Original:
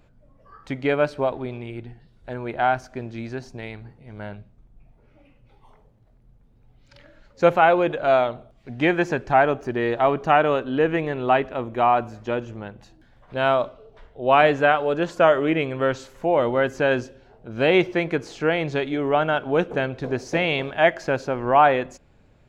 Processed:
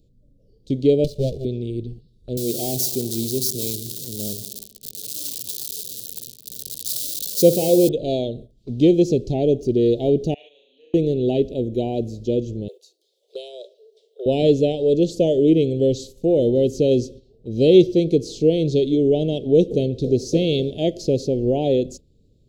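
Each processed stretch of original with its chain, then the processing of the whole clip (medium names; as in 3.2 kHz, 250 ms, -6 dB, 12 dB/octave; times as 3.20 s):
1.04–1.45 s: comb filter that takes the minimum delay 1.7 ms + hysteresis with a dead band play -42 dBFS
2.37–7.89 s: zero-crossing glitches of -20.5 dBFS + high-pass 120 Hz + feedback echo behind a low-pass 62 ms, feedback 79%, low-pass 2.8 kHz, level -16 dB
10.34–10.94 s: ladder band-pass 2.2 kHz, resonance 30% + flutter echo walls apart 5.9 m, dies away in 0.93 s
12.68–14.26 s: steep high-pass 380 Hz 96 dB/octave + treble shelf 3.8 kHz +9 dB + compression 5:1, threshold -30 dBFS
whole clip: Chebyshev band-stop 460–3800 Hz, order 3; gate -46 dBFS, range -9 dB; trim +8 dB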